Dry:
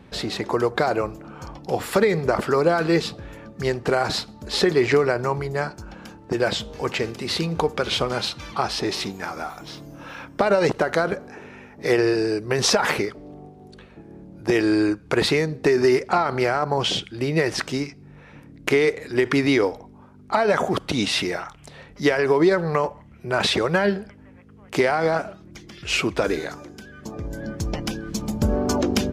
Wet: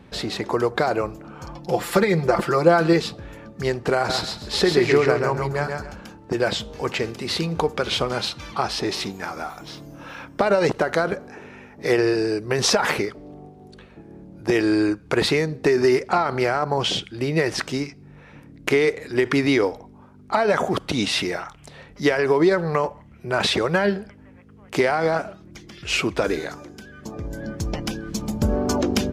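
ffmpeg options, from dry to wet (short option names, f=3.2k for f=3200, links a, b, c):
-filter_complex "[0:a]asettb=1/sr,asplit=3[a][b][c];[a]atrim=end=1.474[d];[b]atrim=start=1.47:end=2.93,asetpts=PTS-STARTPTS,afade=t=in:d=0.004:c=qsin,afade=t=out:st=1.456:d=0.004:c=qsin,aecho=1:1:5.8:0.65,atrim=end_sample=64386[e];[c]atrim=start=2.926[f];[d][e]acrossfade=d=0.004:c1=hsin:c2=qsin[g];[g][f]acrossfade=d=0.004:c1=qsin:c2=hsin,asettb=1/sr,asplit=3[h][i][j];[h]atrim=end=3.954[k];[i]atrim=start=3.95:end=6.01,asetpts=PTS-STARTPTS,afade=t=in:d=0.004:c=qsin,afade=t=out:st=2.056:d=0.004:c=qsin,aecho=1:1:135|270|405:0.596|0.149|0.0372,atrim=end_sample=90846[l];[j]atrim=start=6.006[m];[k][l]acrossfade=d=0.004:c1=hsin:c2=qsin[n];[n][m]acrossfade=d=0.004:c1=qsin:c2=hsin"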